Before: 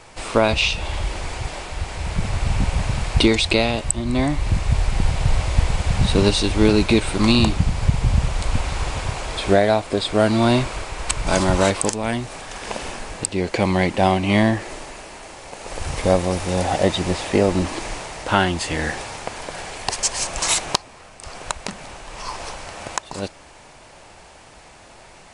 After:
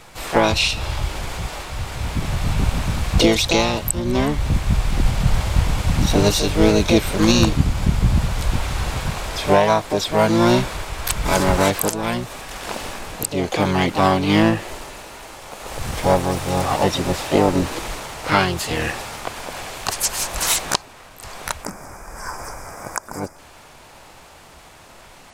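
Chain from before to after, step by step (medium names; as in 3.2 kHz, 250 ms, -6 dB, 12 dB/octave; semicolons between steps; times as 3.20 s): time-frequency box 21.64–23.39 s, 1.7–4.7 kHz -20 dB; harmony voices +7 st -3 dB; trim -1 dB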